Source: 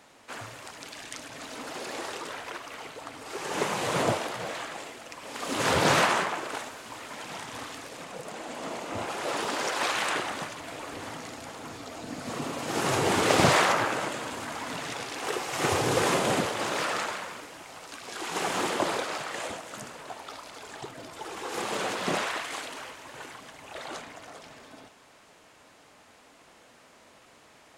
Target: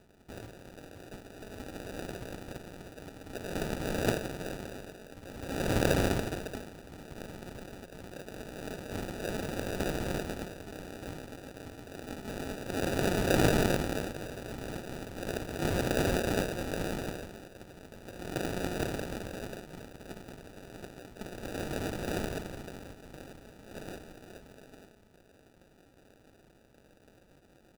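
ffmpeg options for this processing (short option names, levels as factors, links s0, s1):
-af "tremolo=f=190:d=0.889,aresample=8000,aresample=44100,acrusher=samples=41:mix=1:aa=0.000001"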